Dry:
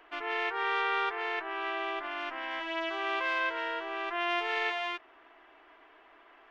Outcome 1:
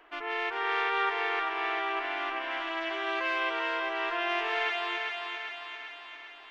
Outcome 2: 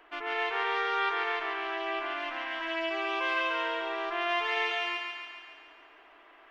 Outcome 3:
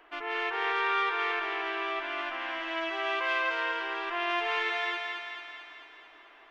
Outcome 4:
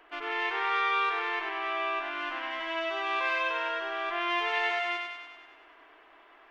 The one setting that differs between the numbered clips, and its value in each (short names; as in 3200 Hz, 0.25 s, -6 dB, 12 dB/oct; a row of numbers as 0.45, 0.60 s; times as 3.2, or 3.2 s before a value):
thinning echo, time: 395, 140, 220, 96 ms